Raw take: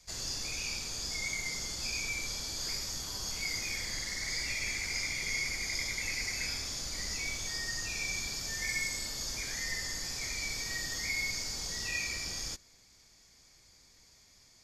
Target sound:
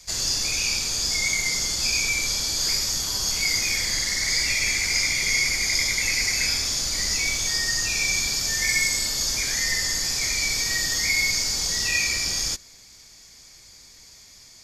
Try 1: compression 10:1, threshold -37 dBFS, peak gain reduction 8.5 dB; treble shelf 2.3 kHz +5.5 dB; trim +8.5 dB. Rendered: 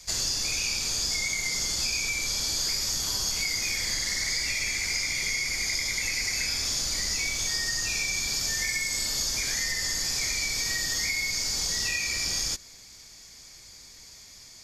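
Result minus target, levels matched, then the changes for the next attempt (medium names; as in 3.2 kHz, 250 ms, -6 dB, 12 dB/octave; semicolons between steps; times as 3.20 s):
compression: peak gain reduction +8.5 dB
remove: compression 10:1, threshold -37 dBFS, peak gain reduction 8.5 dB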